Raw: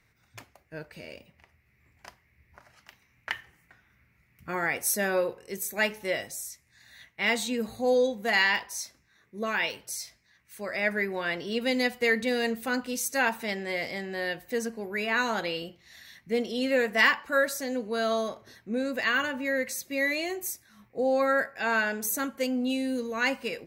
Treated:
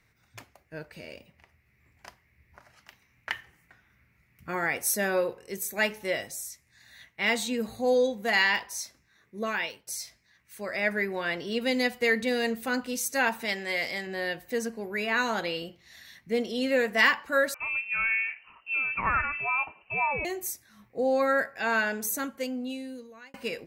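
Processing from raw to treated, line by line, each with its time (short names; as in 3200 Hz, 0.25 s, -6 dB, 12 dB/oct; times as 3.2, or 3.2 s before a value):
9.47–9.87 fade out, to -14.5 dB
13.45–14.07 tilt shelf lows -4.5 dB, about 760 Hz
17.54–20.25 inverted band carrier 2900 Hz
21.97–23.34 fade out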